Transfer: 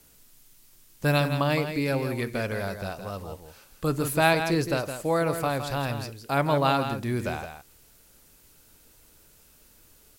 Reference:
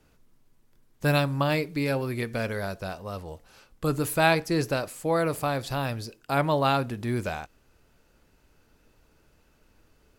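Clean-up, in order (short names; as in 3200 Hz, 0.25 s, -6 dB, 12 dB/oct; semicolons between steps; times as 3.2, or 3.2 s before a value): expander -49 dBFS, range -21 dB; inverse comb 0.165 s -8.5 dB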